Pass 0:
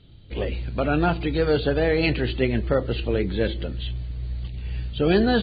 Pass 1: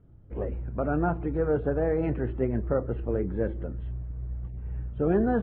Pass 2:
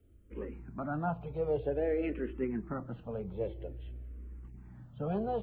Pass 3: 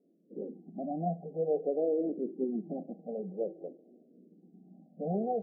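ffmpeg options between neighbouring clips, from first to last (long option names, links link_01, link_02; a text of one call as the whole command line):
ffmpeg -i in.wav -af "lowpass=frequency=1400:width=0.5412,lowpass=frequency=1400:width=1.3066,volume=-4.5dB" out.wav
ffmpeg -i in.wav -filter_complex "[0:a]acrossover=split=130|1300[link_01][link_02][link_03];[link_01]asoftclip=type=tanh:threshold=-37.5dB[link_04];[link_03]aexciter=amount=2.3:drive=7.9:freq=2300[link_05];[link_04][link_02][link_05]amix=inputs=3:normalize=0,asplit=2[link_06][link_07];[link_07]afreqshift=-0.51[link_08];[link_06][link_08]amix=inputs=2:normalize=1,volume=-4dB" out.wav
ffmpeg -i in.wav -af "aemphasis=mode=production:type=75fm,afftfilt=real='re*between(b*sr/4096,160,800)':imag='im*between(b*sr/4096,160,800)':win_size=4096:overlap=0.75,volume=2.5dB" -ar 16000 -c:a libvorbis -b:a 16k out.ogg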